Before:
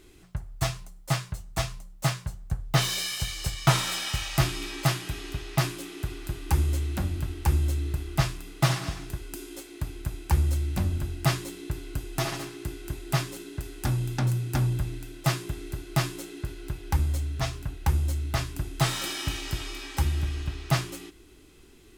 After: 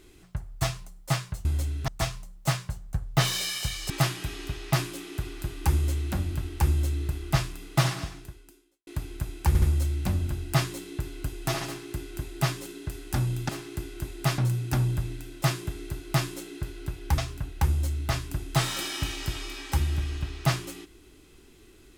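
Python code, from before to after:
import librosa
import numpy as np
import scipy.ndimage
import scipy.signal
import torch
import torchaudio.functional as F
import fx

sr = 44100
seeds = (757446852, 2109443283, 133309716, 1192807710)

y = fx.edit(x, sr, fx.cut(start_s=3.47, length_s=1.28),
    fx.fade_out_span(start_s=8.78, length_s=0.94, curve='qua'),
    fx.stutter(start_s=10.33, slice_s=0.07, count=3),
    fx.duplicate(start_s=12.37, length_s=0.89, to_s=14.2),
    fx.move(start_s=17.0, length_s=0.43, to_s=1.45), tone=tone)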